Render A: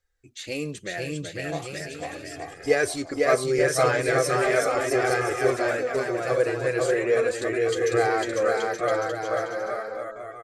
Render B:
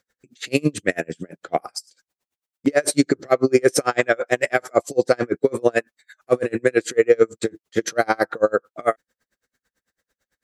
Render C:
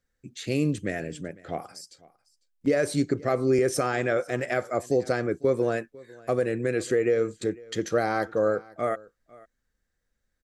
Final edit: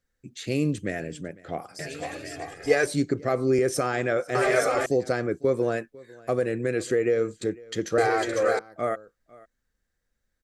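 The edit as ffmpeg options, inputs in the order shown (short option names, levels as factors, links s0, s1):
-filter_complex "[0:a]asplit=3[s0][s1][s2];[2:a]asplit=4[s3][s4][s5][s6];[s3]atrim=end=1.792[s7];[s0]atrim=start=1.788:end=2.862[s8];[s4]atrim=start=2.858:end=4.352[s9];[s1]atrim=start=4.348:end=4.862[s10];[s5]atrim=start=4.858:end=7.982[s11];[s2]atrim=start=7.978:end=8.592[s12];[s6]atrim=start=8.588[s13];[s7][s8]acrossfade=d=0.004:c1=hsin:c2=hsin[s14];[s14][s9]acrossfade=d=0.004:c1=hsin:c2=hsin[s15];[s15][s10]acrossfade=d=0.004:c1=hsin:c2=hsin[s16];[s16][s11]acrossfade=d=0.004:c1=hsin:c2=hsin[s17];[s17][s12]acrossfade=d=0.004:c1=hsin:c2=hsin[s18];[s18][s13]acrossfade=d=0.004:c1=hsin:c2=hsin"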